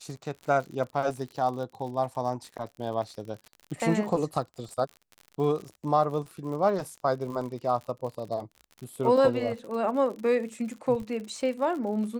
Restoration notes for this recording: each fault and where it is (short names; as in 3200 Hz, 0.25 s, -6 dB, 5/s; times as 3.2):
crackle 57/s -36 dBFS